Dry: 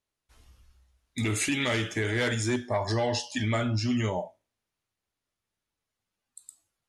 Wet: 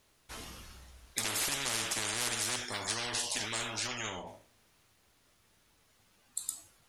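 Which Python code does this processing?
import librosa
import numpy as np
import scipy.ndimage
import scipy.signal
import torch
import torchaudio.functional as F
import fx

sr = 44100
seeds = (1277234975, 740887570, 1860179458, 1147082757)

y = fx.lowpass(x, sr, hz=1600.0, slope=6, at=(3.86, 4.26), fade=0.02)
y = fx.spectral_comp(y, sr, ratio=10.0)
y = y * librosa.db_to_amplitude(6.0)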